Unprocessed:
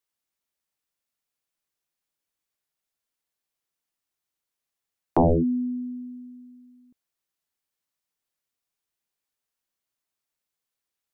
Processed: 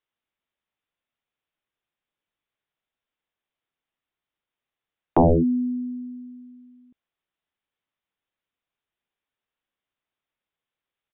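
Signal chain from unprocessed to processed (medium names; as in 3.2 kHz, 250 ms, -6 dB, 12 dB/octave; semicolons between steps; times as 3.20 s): resampled via 8 kHz; trim +2.5 dB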